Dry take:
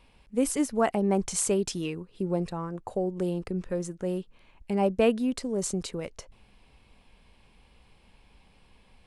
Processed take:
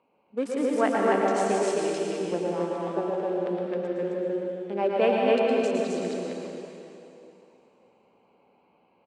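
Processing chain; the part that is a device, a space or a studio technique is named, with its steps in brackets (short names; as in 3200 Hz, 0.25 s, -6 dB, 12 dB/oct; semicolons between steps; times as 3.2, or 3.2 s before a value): Wiener smoothing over 25 samples; HPF 95 Hz; station announcement (BPF 340–3900 Hz; bell 1600 Hz +4 dB 0.56 oct; loudspeakers at several distances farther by 39 m -6 dB, 91 m -1 dB; reverb RT60 2.8 s, pre-delay 0.102 s, DRR -1 dB)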